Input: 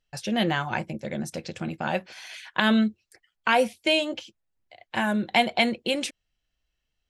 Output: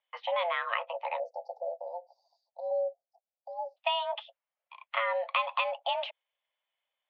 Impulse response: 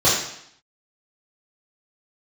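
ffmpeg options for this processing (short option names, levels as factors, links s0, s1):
-filter_complex "[0:a]acompressor=threshold=0.0562:ratio=6,highpass=f=210:t=q:w=0.5412,highpass=f=210:t=q:w=1.307,lowpass=f=2900:t=q:w=0.5176,lowpass=f=2900:t=q:w=0.7071,lowpass=f=2900:t=q:w=1.932,afreqshift=340,asplit=3[s0][s1][s2];[s0]afade=t=out:st=1.18:d=0.02[s3];[s1]asuperstop=centerf=2000:order=20:qfactor=0.5,afade=t=in:st=1.18:d=0.02,afade=t=out:st=3.76:d=0.02[s4];[s2]afade=t=in:st=3.76:d=0.02[s5];[s3][s4][s5]amix=inputs=3:normalize=0"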